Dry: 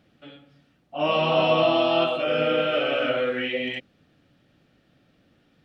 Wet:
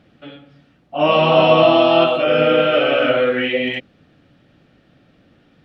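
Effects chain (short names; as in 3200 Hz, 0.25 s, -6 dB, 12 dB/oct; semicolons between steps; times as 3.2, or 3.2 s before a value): LPF 3700 Hz 6 dB/oct; gain +8.5 dB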